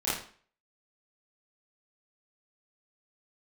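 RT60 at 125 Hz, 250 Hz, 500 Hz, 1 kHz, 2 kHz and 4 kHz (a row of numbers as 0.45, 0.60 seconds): 0.40, 0.50, 0.45, 0.45, 0.45, 0.40 seconds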